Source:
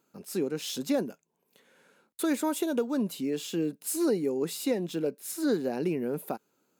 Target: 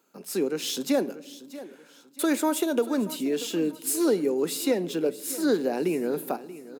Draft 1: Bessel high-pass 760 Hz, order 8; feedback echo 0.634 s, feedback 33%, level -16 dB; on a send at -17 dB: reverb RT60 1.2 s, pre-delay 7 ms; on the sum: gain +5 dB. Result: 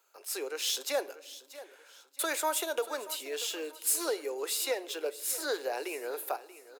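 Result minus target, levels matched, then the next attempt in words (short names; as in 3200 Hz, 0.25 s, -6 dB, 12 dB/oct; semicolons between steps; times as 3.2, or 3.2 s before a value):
250 Hz band -14.0 dB
Bessel high-pass 250 Hz, order 8; feedback echo 0.634 s, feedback 33%, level -16 dB; on a send at -17 dB: reverb RT60 1.2 s, pre-delay 7 ms; on the sum: gain +5 dB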